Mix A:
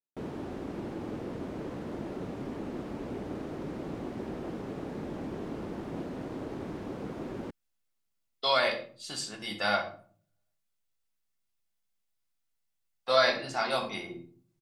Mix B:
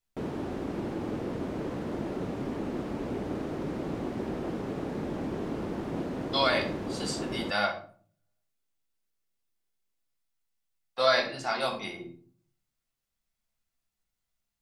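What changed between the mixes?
speech: entry −2.10 s
background +4.0 dB

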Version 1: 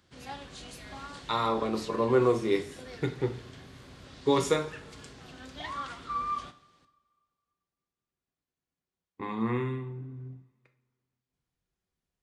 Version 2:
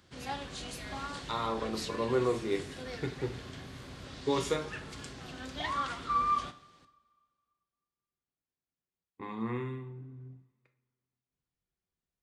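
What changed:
speech −5.5 dB
background +3.5 dB

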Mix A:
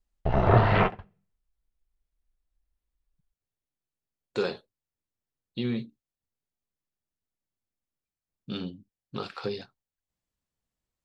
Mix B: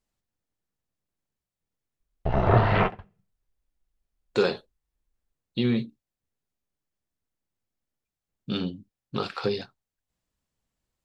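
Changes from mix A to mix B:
speech +5.5 dB
background: entry +2.00 s

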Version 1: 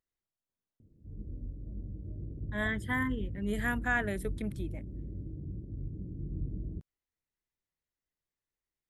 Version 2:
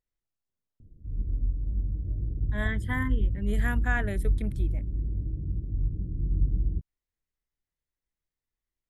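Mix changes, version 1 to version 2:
background: add low-shelf EQ 93 Hz +7.5 dB
master: add low-shelf EQ 68 Hz +12 dB

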